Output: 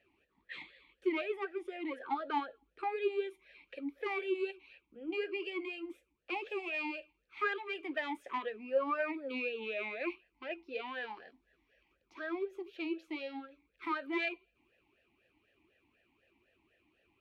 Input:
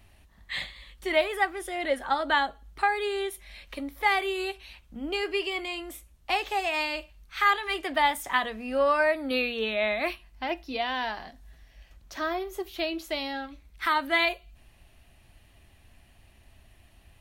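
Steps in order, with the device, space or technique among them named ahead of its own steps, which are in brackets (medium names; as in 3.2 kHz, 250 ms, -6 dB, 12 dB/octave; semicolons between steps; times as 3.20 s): talk box (valve stage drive 15 dB, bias 0.45; talking filter e-u 4 Hz); trim +4.5 dB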